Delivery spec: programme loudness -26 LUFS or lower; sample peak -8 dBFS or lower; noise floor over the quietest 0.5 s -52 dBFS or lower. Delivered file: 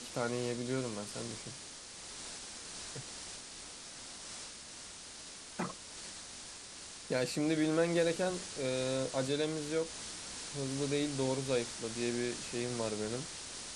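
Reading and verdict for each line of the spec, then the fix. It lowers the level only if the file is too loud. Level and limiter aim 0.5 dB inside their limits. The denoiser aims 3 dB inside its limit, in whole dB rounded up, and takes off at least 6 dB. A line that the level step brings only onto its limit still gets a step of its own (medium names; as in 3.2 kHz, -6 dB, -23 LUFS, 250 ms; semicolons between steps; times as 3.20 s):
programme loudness -37.0 LUFS: pass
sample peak -18.5 dBFS: pass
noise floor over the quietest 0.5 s -49 dBFS: fail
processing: noise reduction 6 dB, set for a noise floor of -49 dBFS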